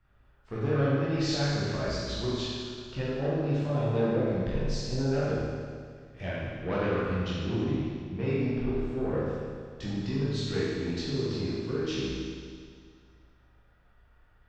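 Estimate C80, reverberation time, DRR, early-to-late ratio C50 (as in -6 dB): -1.0 dB, 2.0 s, -9.5 dB, -3.5 dB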